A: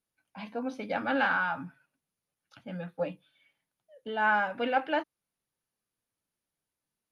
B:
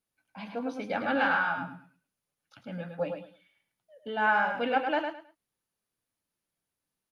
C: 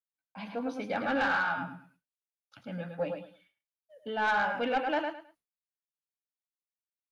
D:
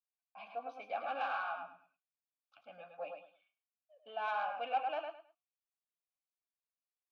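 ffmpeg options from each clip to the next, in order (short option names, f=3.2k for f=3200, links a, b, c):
-af "aecho=1:1:106|212|318:0.501|0.11|0.0243"
-af "agate=range=-33dB:threshold=-60dB:ratio=3:detection=peak,asoftclip=type=tanh:threshold=-21dB"
-filter_complex "[0:a]asplit=3[a][b][c];[a]bandpass=f=730:t=q:w=8,volume=0dB[d];[b]bandpass=f=1.09k:t=q:w=8,volume=-6dB[e];[c]bandpass=f=2.44k:t=q:w=8,volume=-9dB[f];[d][e][f]amix=inputs=3:normalize=0,tiltshelf=f=790:g=-5.5,volume=2dB"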